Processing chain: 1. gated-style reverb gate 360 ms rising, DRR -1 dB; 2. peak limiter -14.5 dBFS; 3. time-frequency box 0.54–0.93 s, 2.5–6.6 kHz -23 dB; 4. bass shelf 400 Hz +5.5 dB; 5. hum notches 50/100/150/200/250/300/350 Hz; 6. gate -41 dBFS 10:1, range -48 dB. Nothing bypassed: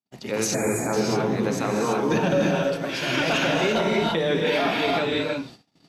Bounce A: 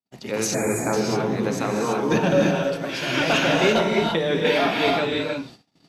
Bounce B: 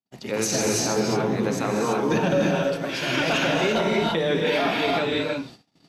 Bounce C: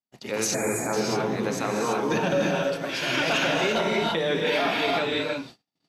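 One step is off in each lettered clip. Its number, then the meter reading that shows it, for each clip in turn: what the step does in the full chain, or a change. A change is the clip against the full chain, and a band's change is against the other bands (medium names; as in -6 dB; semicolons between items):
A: 2, crest factor change +2.5 dB; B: 3, 8 kHz band +3.0 dB; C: 4, 125 Hz band -4.0 dB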